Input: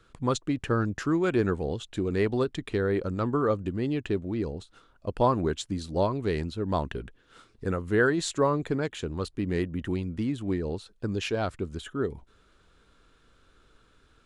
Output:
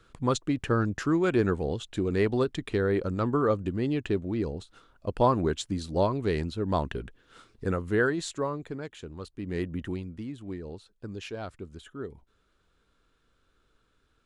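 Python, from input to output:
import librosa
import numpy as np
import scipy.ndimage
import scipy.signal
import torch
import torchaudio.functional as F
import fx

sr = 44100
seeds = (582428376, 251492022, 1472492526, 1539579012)

y = fx.gain(x, sr, db=fx.line((7.78, 0.5), (8.65, -8.5), (9.33, -8.5), (9.71, -0.5), (10.23, -8.5)))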